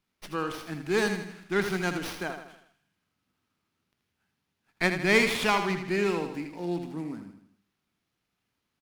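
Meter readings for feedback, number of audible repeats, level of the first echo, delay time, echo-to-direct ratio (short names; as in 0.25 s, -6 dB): 47%, 5, -8.0 dB, 80 ms, -7.0 dB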